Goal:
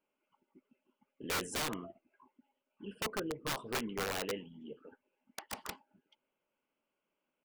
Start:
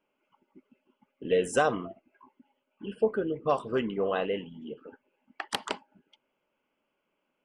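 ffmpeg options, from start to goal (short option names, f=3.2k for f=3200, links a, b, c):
-af "aeval=exprs='(mod(12.6*val(0)+1,2)-1)/12.6':c=same,atempo=1,volume=-7.5dB"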